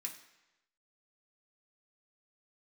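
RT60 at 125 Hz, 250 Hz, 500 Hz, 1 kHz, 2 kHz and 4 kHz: 0.95, 0.90, 1.0, 1.0, 1.0, 0.95 seconds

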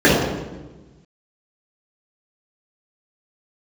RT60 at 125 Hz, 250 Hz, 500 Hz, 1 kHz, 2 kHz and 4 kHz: 1.7, 1.5, 1.3, 1.1, 0.95, 0.85 seconds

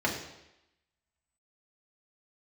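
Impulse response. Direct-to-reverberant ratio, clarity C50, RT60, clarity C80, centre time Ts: −3.0 dB, 6.0 dB, 0.90 s, 8.5 dB, 30 ms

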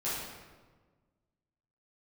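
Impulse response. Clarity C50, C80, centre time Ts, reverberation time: −1.0 dB, 2.0 dB, 88 ms, 1.4 s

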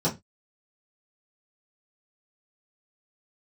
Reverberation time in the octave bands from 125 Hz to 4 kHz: 0.30, 0.25, 0.20, 0.20, 0.20, 0.20 seconds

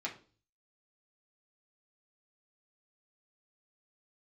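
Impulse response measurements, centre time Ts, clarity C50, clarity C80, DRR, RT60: 15 ms, 12.0 dB, 17.0 dB, −3.5 dB, 0.40 s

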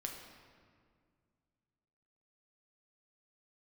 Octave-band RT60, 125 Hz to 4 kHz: 2.9, 2.6, 2.2, 1.9, 1.7, 1.3 seconds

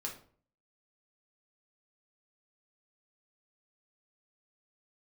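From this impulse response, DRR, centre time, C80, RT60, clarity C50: −1.5 dB, 21 ms, 13.5 dB, 0.50 s, 8.5 dB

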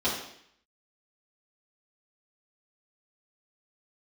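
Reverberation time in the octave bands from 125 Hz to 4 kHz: 0.70, 0.70, 0.65, 0.65, 0.75, 0.70 seconds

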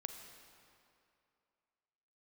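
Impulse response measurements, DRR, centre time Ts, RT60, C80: 6.0 dB, 45 ms, 2.6 s, 7.0 dB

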